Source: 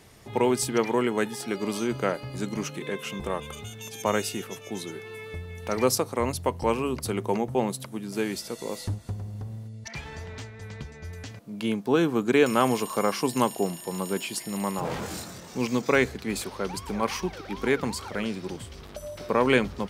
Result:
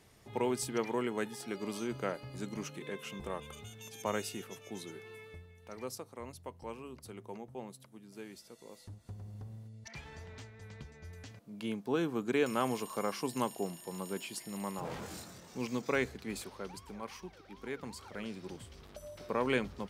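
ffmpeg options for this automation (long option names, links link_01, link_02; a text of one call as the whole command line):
ffmpeg -i in.wav -af "volume=6.5dB,afade=type=out:start_time=5.1:duration=0.45:silence=0.334965,afade=type=in:start_time=8.9:duration=0.4:silence=0.354813,afade=type=out:start_time=16.3:duration=0.75:silence=0.446684,afade=type=in:start_time=17.69:duration=0.82:silence=0.446684" out.wav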